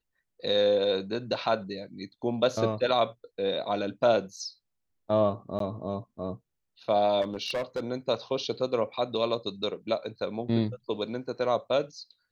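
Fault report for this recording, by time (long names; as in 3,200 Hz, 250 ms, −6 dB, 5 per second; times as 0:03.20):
0:05.59–0:05.60: drop-out 13 ms
0:07.21–0:07.87: clipping −26.5 dBFS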